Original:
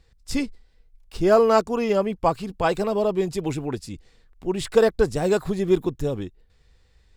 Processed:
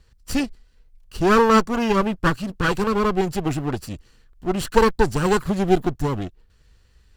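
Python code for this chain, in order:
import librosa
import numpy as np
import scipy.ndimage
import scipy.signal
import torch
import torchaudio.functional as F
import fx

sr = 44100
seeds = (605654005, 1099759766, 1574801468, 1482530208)

y = fx.lower_of_two(x, sr, delay_ms=0.68)
y = F.gain(torch.from_numpy(y), 3.5).numpy()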